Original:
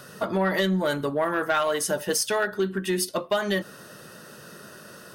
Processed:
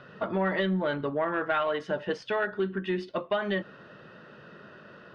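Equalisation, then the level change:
low-pass filter 3,200 Hz 24 dB per octave
−3.5 dB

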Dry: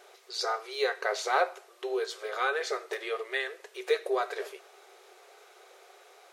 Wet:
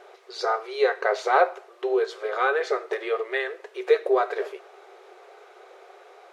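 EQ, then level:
low-pass filter 1,300 Hz 6 dB per octave
+8.5 dB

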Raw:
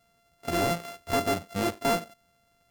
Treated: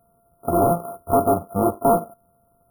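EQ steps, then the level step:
dynamic equaliser 900 Hz, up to +3 dB, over −41 dBFS, Q 0.74
linear-phase brick-wall band-stop 1,400–9,000 Hz
notch filter 1,400 Hz, Q 11
+7.5 dB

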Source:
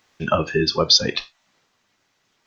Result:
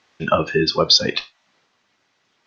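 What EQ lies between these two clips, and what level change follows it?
low-pass filter 5,600 Hz 12 dB per octave
low-shelf EQ 80 Hz −11.5 dB
+2.5 dB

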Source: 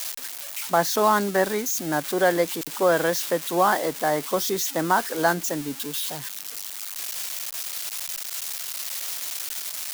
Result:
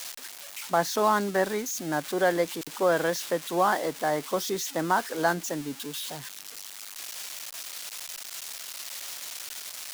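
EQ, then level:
high-shelf EQ 11,000 Hz −8 dB
−3.5 dB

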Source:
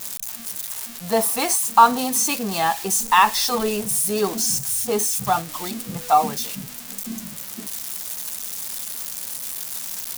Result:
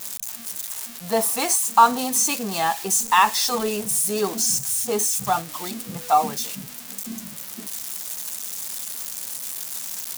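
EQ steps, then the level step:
low-shelf EQ 66 Hz −10.5 dB
dynamic equaliser 7,200 Hz, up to +4 dB, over −36 dBFS, Q 2.2
−1.5 dB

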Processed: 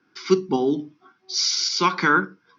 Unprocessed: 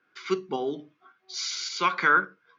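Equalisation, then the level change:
low-pass with resonance 5,400 Hz, resonance Q 5.1
low shelf with overshoot 420 Hz +10.5 dB, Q 1.5
parametric band 870 Hz +10 dB 0.58 octaves
0.0 dB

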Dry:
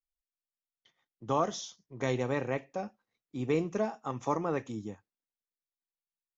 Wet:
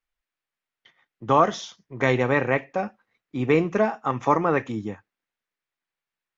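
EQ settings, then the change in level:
low-pass filter 2,500 Hz 6 dB per octave
parametric band 1,900 Hz +8.5 dB 1.7 octaves
+8.5 dB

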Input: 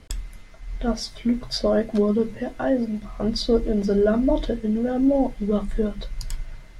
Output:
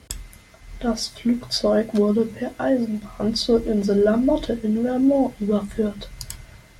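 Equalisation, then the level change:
high-pass filter 50 Hz 24 dB per octave
high-shelf EQ 8,400 Hz +10.5 dB
+1.5 dB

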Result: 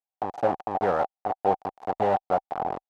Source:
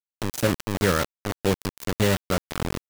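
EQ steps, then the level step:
low-pass with resonance 770 Hz, resonance Q 9.5
spectral tilt +4.5 dB per octave
−1.0 dB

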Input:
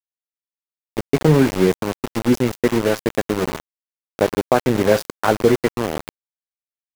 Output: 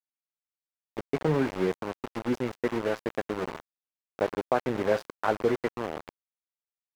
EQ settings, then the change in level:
low-pass filter 1,400 Hz 6 dB per octave
low-shelf EQ 440 Hz −10.5 dB
−4.5 dB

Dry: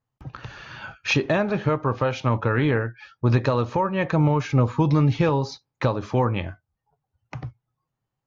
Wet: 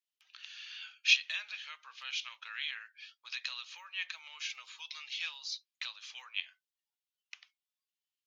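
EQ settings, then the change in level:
four-pole ladder high-pass 2,500 Hz, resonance 40%
+5.0 dB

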